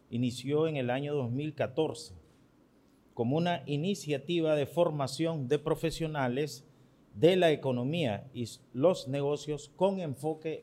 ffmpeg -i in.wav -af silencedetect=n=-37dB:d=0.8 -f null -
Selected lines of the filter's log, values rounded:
silence_start: 2.06
silence_end: 3.17 | silence_duration: 1.11